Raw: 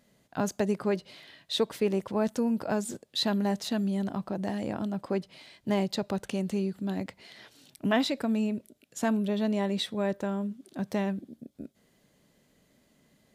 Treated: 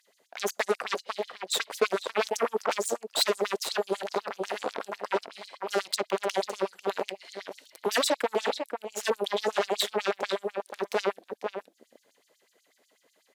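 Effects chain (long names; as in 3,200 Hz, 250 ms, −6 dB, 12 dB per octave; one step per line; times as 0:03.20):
slap from a distant wall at 85 metres, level −8 dB
harmonic generator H 8 −12 dB, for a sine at −14.5 dBFS
auto-filter high-pass sine 8.1 Hz 420–6,400 Hz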